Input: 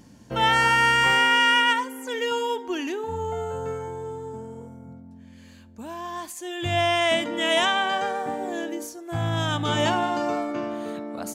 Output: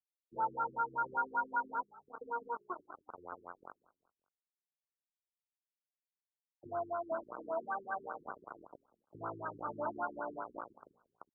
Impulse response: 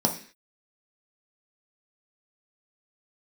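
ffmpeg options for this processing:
-filter_complex "[0:a]acrusher=bits=3:mix=0:aa=0.000001,aderivative,asplit=2[link_01][link_02];[link_02]asplit=3[link_03][link_04][link_05];[link_03]adelay=188,afreqshift=-57,volume=-22.5dB[link_06];[link_04]adelay=376,afreqshift=-114,volume=-30.5dB[link_07];[link_05]adelay=564,afreqshift=-171,volume=-38.4dB[link_08];[link_06][link_07][link_08]amix=inputs=3:normalize=0[link_09];[link_01][link_09]amix=inputs=2:normalize=0,afftfilt=real='re*lt(b*sr/1024,400*pow(1600/400,0.5+0.5*sin(2*PI*5.2*pts/sr)))':imag='im*lt(b*sr/1024,400*pow(1600/400,0.5+0.5*sin(2*PI*5.2*pts/sr)))':win_size=1024:overlap=0.75,volume=7.5dB"

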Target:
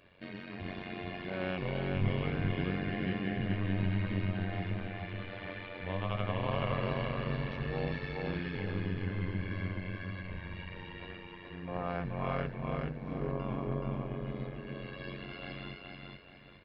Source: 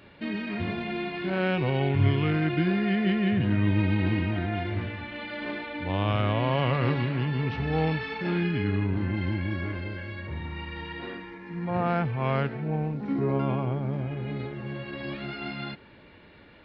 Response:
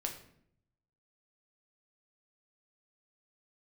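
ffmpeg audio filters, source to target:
-filter_complex "[0:a]aecho=1:1:1.8:0.43,tremolo=f=92:d=0.919,asplit=2[link_01][link_02];[link_02]aecho=0:1:426|852|1278|1704|2130:0.708|0.255|0.0917|0.033|0.0119[link_03];[link_01][link_03]amix=inputs=2:normalize=0,volume=-6.5dB"

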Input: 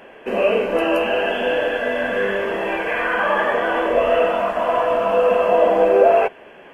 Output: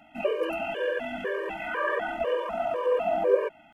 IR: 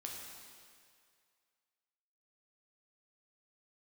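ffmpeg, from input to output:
-af "atempo=1.8,afftfilt=real='re*gt(sin(2*PI*2*pts/sr)*(1-2*mod(floor(b*sr/1024/310),2)),0)':imag='im*gt(sin(2*PI*2*pts/sr)*(1-2*mod(floor(b*sr/1024/310),2)),0)':win_size=1024:overlap=0.75,volume=-6.5dB"

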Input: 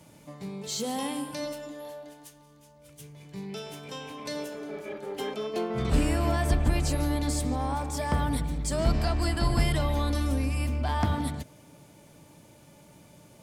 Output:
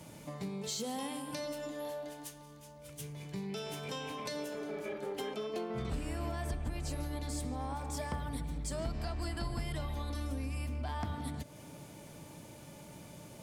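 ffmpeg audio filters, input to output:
ffmpeg -i in.wav -af "acompressor=threshold=-40dB:ratio=4,bandreject=frequency=290.6:width_type=h:width=4,bandreject=frequency=581.2:width_type=h:width=4,bandreject=frequency=871.8:width_type=h:width=4,bandreject=frequency=1162.4:width_type=h:width=4,bandreject=frequency=1453:width_type=h:width=4,bandreject=frequency=1743.6:width_type=h:width=4,bandreject=frequency=2034.2:width_type=h:width=4,bandreject=frequency=2324.8:width_type=h:width=4,bandreject=frequency=2615.4:width_type=h:width=4,bandreject=frequency=2906:width_type=h:width=4,bandreject=frequency=3196.6:width_type=h:width=4,bandreject=frequency=3487.2:width_type=h:width=4,bandreject=frequency=3777.8:width_type=h:width=4,bandreject=frequency=4068.4:width_type=h:width=4,bandreject=frequency=4359:width_type=h:width=4,bandreject=frequency=4649.6:width_type=h:width=4,bandreject=frequency=4940.2:width_type=h:width=4,bandreject=frequency=5230.8:width_type=h:width=4,bandreject=frequency=5521.4:width_type=h:width=4,bandreject=frequency=5812:width_type=h:width=4,bandreject=frequency=6102.6:width_type=h:width=4,bandreject=frequency=6393.2:width_type=h:width=4,bandreject=frequency=6683.8:width_type=h:width=4,bandreject=frequency=6974.4:width_type=h:width=4,bandreject=frequency=7265:width_type=h:width=4,bandreject=frequency=7555.6:width_type=h:width=4,bandreject=frequency=7846.2:width_type=h:width=4,bandreject=frequency=8136.8:width_type=h:width=4,bandreject=frequency=8427.4:width_type=h:width=4,bandreject=frequency=8718:width_type=h:width=4,bandreject=frequency=9008.6:width_type=h:width=4,bandreject=frequency=9299.2:width_type=h:width=4,bandreject=frequency=9589.8:width_type=h:width=4,bandreject=frequency=9880.4:width_type=h:width=4,bandreject=frequency=10171:width_type=h:width=4,bandreject=frequency=10461.6:width_type=h:width=4,bandreject=frequency=10752.2:width_type=h:width=4,bandreject=frequency=11042.8:width_type=h:width=4,bandreject=frequency=11333.4:width_type=h:width=4,volume=3dB" out.wav

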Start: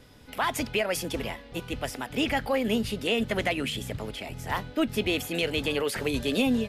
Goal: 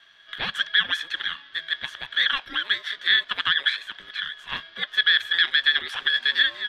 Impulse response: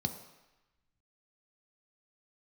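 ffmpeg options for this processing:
-af "bandpass=frequency=2500:width_type=q:width=15:csg=0,aeval=exprs='val(0)*sin(2*PI*830*n/s)':channel_layout=same,alimiter=level_in=29dB:limit=-1dB:release=50:level=0:latency=1,volume=-6.5dB"

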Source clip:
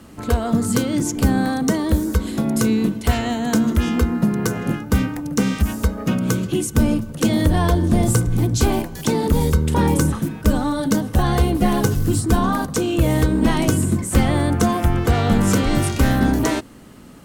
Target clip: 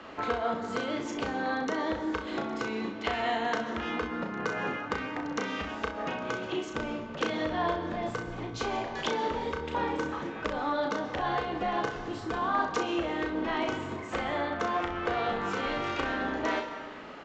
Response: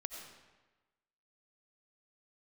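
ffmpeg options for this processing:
-filter_complex "[0:a]acompressor=threshold=-27dB:ratio=6,acrossover=split=410 3600:gain=0.0891 1 0.0794[link_01][link_02][link_03];[link_01][link_02][link_03]amix=inputs=3:normalize=0,aecho=1:1:35|64:0.562|0.266,asplit=2[link_04][link_05];[1:a]atrim=start_sample=2205,asetrate=31752,aresample=44100[link_06];[link_05][link_06]afir=irnorm=-1:irlink=0,volume=-0.5dB[link_07];[link_04][link_07]amix=inputs=2:normalize=0,aresample=16000,aresample=44100"

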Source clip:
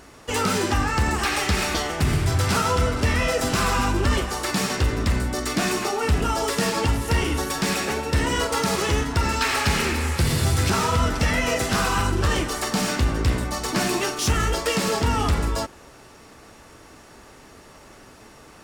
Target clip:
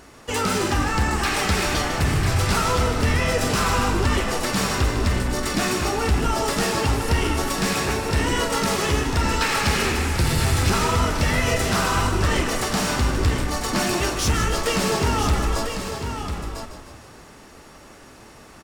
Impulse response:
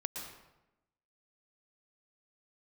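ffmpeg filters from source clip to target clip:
-filter_complex "[0:a]asplit=2[link_01][link_02];[link_02]aecho=0:1:997:0.398[link_03];[link_01][link_03]amix=inputs=2:normalize=0,acontrast=53,asplit=2[link_04][link_05];[link_05]asplit=7[link_06][link_07][link_08][link_09][link_10][link_11][link_12];[link_06]adelay=153,afreqshift=-42,volume=-9dB[link_13];[link_07]adelay=306,afreqshift=-84,volume=-13.7dB[link_14];[link_08]adelay=459,afreqshift=-126,volume=-18.5dB[link_15];[link_09]adelay=612,afreqshift=-168,volume=-23.2dB[link_16];[link_10]adelay=765,afreqshift=-210,volume=-27.9dB[link_17];[link_11]adelay=918,afreqshift=-252,volume=-32.7dB[link_18];[link_12]adelay=1071,afreqshift=-294,volume=-37.4dB[link_19];[link_13][link_14][link_15][link_16][link_17][link_18][link_19]amix=inputs=7:normalize=0[link_20];[link_04][link_20]amix=inputs=2:normalize=0,volume=-6dB"

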